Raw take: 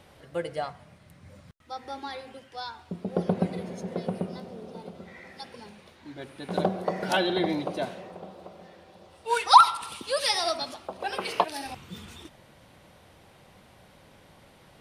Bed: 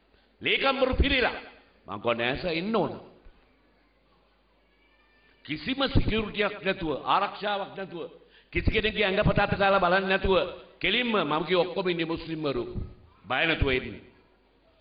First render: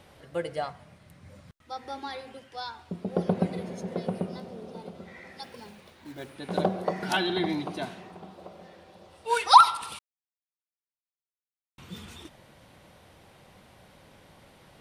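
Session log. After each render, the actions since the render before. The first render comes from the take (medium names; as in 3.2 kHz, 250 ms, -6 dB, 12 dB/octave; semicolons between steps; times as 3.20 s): 5.43–6.35 s: short-mantissa float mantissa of 2-bit; 6.93–8.38 s: peaking EQ 540 Hz -14.5 dB 0.34 oct; 9.99–11.78 s: mute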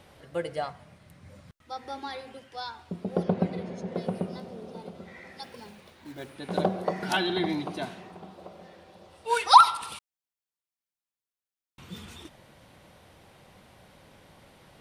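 3.23–3.95 s: distance through air 72 m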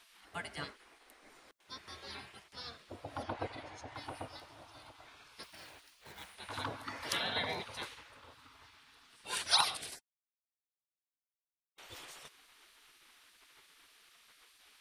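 spectral gate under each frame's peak -15 dB weak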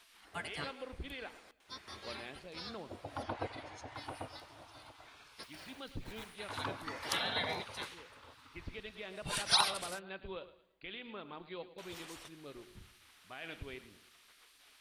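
add bed -21.5 dB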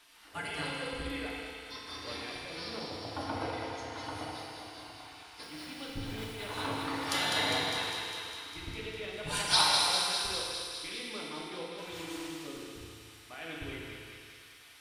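thinning echo 202 ms, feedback 73%, high-pass 900 Hz, level -4.5 dB; FDN reverb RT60 1.9 s, low-frequency decay 1×, high-frequency decay 0.95×, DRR -3 dB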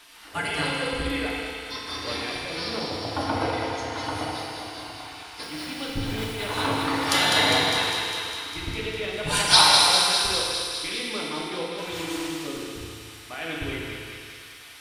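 trim +10 dB; peak limiter -2 dBFS, peak gain reduction 1 dB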